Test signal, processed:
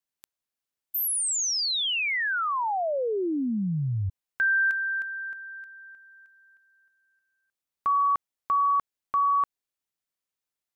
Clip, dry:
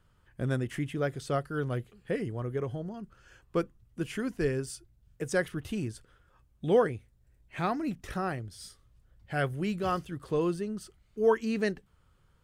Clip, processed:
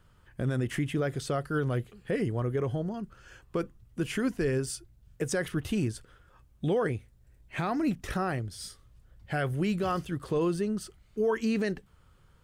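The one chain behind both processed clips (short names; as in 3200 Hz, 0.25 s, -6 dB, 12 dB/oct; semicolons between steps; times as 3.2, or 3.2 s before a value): limiter -24.5 dBFS; gain +5 dB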